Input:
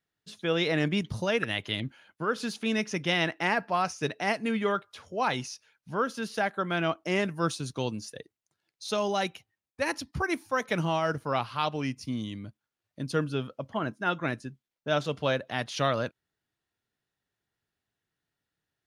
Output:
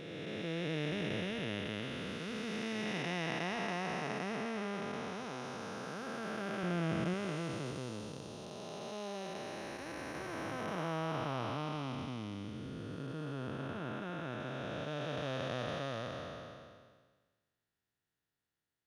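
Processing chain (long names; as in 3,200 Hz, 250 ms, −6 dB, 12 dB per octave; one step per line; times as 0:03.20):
spectrum smeared in time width 1,050 ms
0:06.63–0:07.14: low-shelf EQ 200 Hz +9.5 dB
level −2.5 dB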